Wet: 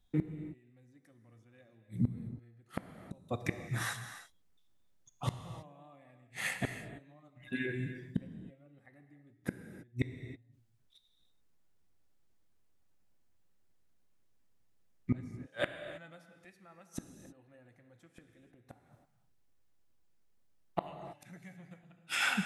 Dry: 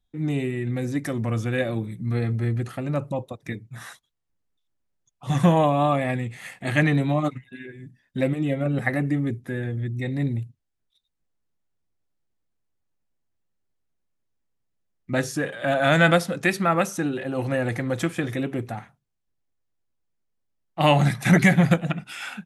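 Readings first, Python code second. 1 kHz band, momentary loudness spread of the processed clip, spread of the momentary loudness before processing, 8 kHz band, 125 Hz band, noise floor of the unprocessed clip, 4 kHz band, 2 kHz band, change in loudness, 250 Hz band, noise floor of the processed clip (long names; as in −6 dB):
−19.5 dB, 21 LU, 17 LU, −10.0 dB, −17.5 dB, −77 dBFS, −11.0 dB, −14.0 dB, −16.0 dB, −17.0 dB, −69 dBFS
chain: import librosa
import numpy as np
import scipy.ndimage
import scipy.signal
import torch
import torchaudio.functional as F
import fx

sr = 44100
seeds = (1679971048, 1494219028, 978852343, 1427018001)

y = fx.gate_flip(x, sr, shuts_db=-22.0, range_db=-40)
y = fx.rev_gated(y, sr, seeds[0], gate_ms=350, shape='flat', drr_db=7.5)
y = y * 10.0 ** (3.5 / 20.0)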